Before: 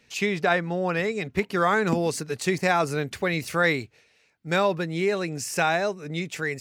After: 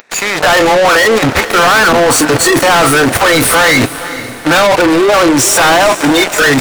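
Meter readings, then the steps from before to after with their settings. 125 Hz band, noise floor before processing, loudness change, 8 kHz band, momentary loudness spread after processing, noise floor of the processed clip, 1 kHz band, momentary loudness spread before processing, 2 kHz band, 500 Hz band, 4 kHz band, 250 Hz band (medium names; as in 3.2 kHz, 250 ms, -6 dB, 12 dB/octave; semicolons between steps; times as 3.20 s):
+11.0 dB, -63 dBFS, +17.0 dB, +23.5 dB, 5 LU, -23 dBFS, +17.5 dB, 6 LU, +17.5 dB, +15.5 dB, +21.5 dB, +16.5 dB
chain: spectral levelling over time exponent 0.4; spectral noise reduction 23 dB; waveshaping leveller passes 5; level held to a coarse grid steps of 21 dB; overdrive pedal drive 34 dB, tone 7 kHz, clips at -10.5 dBFS; on a send: echo that smears into a reverb 454 ms, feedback 43%, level -13.5 dB; on the sum: trim +7.5 dB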